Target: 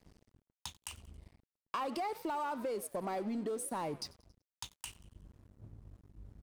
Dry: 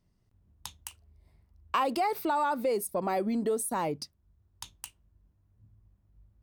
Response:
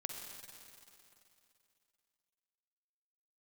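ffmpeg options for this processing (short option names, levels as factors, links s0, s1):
-filter_complex "[0:a]areverse,acompressor=mode=upward:threshold=0.0251:ratio=2.5,areverse,lowpass=11000,asplit=5[s0][s1][s2][s3][s4];[s1]adelay=91,afreqshift=56,volume=0.112[s5];[s2]adelay=182,afreqshift=112,volume=0.0537[s6];[s3]adelay=273,afreqshift=168,volume=0.0257[s7];[s4]adelay=364,afreqshift=224,volume=0.0124[s8];[s0][s5][s6][s7][s8]amix=inputs=5:normalize=0,asoftclip=type=tanh:threshold=0.0631,acompressor=threshold=0.0316:ratio=6,aeval=exprs='sgn(val(0))*max(abs(val(0))-0.00299,0)':c=same,volume=0.708"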